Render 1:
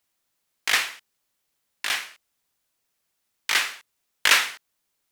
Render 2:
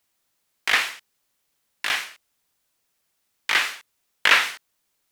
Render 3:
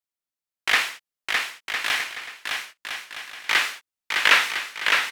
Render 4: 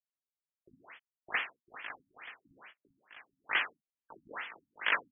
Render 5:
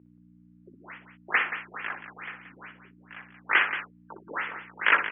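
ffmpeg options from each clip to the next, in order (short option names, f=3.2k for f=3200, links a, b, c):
-filter_complex "[0:a]acrossover=split=3700[a][b];[b]acompressor=threshold=-33dB:ratio=4:attack=1:release=60[c];[a][c]amix=inputs=2:normalize=0,volume=3dB"
-filter_complex "[0:a]agate=range=-20dB:threshold=-36dB:ratio=16:detection=peak,asplit=2[a][b];[b]aecho=0:1:610|1006|1264|1432|1541:0.631|0.398|0.251|0.158|0.1[c];[a][c]amix=inputs=2:normalize=0"
-af "lowshelf=f=66:g=-10.5,tremolo=f=0.79:d=0.61,afftfilt=real='re*lt(b*sr/1024,270*pow(3500/270,0.5+0.5*sin(2*PI*2.3*pts/sr)))':imag='im*lt(b*sr/1024,270*pow(3500/270,0.5+0.5*sin(2*PI*2.3*pts/sr)))':win_size=1024:overlap=0.75,volume=-7dB"
-filter_complex "[0:a]aeval=exprs='val(0)+0.00178*(sin(2*PI*60*n/s)+sin(2*PI*2*60*n/s)/2+sin(2*PI*3*60*n/s)/3+sin(2*PI*4*60*n/s)/4+sin(2*PI*5*60*n/s)/5)':c=same,highpass=200,equalizer=f=360:t=q:w=4:g=4,equalizer=f=680:t=q:w=4:g=-4,equalizer=f=1.4k:t=q:w=4:g=3,lowpass=f=2.7k:w=0.5412,lowpass=f=2.7k:w=1.3066,asplit=2[a][b];[b]aecho=0:1:61|178:0.282|0.299[c];[a][c]amix=inputs=2:normalize=0,volume=8.5dB"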